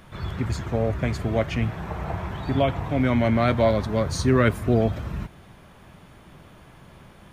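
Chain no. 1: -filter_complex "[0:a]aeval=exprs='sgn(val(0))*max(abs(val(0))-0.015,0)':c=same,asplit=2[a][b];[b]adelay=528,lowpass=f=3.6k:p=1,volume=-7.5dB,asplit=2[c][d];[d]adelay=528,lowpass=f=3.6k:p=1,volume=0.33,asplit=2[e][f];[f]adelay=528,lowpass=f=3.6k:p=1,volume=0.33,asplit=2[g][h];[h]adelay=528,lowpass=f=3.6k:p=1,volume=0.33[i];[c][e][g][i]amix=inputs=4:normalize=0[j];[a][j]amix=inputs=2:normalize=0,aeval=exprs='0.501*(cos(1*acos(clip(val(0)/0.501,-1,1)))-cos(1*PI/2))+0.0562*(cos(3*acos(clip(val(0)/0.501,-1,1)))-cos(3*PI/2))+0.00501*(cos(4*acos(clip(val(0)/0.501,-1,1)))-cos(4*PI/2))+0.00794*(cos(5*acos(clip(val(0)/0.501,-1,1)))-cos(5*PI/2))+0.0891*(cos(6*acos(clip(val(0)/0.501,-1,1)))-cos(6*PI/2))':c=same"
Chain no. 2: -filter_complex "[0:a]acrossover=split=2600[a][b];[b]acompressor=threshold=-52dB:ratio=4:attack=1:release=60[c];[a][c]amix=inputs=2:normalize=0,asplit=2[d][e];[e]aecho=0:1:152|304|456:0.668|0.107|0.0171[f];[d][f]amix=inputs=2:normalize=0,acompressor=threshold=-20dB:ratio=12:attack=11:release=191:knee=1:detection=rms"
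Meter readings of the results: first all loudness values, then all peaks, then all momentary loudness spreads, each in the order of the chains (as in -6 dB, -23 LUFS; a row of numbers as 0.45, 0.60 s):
-26.0, -26.5 LUFS; -7.0, -13.5 dBFS; 15, 5 LU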